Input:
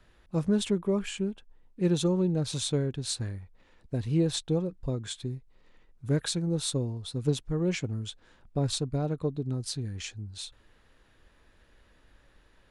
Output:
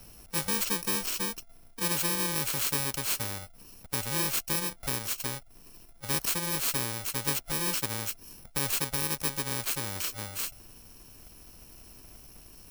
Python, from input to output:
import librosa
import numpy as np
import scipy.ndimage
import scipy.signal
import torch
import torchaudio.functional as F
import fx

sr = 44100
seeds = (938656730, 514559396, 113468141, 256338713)

y = fx.bit_reversed(x, sr, seeds[0], block=64)
y = fx.spectral_comp(y, sr, ratio=2.0)
y = y * 10.0 ** (1.5 / 20.0)